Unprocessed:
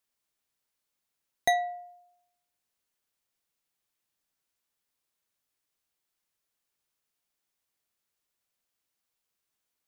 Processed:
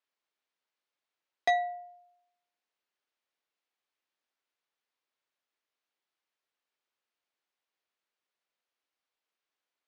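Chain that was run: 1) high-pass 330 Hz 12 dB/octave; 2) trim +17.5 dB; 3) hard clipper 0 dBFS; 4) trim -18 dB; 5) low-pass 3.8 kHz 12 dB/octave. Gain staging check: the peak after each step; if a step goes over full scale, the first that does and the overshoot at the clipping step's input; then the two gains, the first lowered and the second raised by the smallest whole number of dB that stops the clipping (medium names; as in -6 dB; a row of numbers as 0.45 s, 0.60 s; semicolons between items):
-10.5 dBFS, +7.0 dBFS, 0.0 dBFS, -18.0 dBFS, -17.5 dBFS; step 2, 7.0 dB; step 2 +10.5 dB, step 4 -11 dB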